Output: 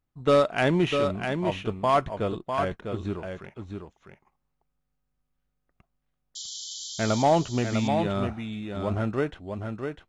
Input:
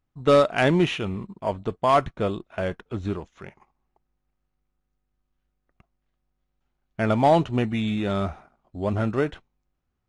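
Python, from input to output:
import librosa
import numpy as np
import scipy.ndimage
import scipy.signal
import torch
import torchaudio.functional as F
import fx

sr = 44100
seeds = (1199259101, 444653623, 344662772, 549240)

y = fx.spec_paint(x, sr, seeds[0], shape='noise', start_s=6.35, length_s=0.88, low_hz=3000.0, high_hz=7500.0, level_db=-35.0)
y = y + 10.0 ** (-6.0 / 20.0) * np.pad(y, (int(651 * sr / 1000.0), 0))[:len(y)]
y = y * librosa.db_to_amplitude(-3.0)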